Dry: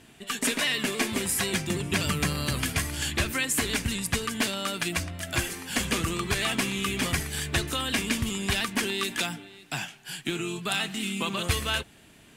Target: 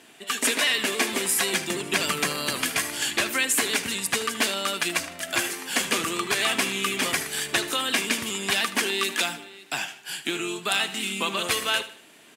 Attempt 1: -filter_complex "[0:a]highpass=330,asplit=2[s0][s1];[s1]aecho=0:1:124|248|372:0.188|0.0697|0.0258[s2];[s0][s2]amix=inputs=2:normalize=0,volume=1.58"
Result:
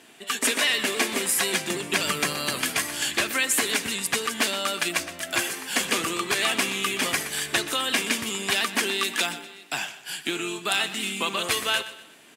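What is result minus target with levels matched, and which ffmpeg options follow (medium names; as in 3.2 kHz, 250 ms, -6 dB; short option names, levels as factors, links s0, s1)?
echo 47 ms late
-filter_complex "[0:a]highpass=330,asplit=2[s0][s1];[s1]aecho=0:1:77|154|231:0.188|0.0697|0.0258[s2];[s0][s2]amix=inputs=2:normalize=0,volume=1.58"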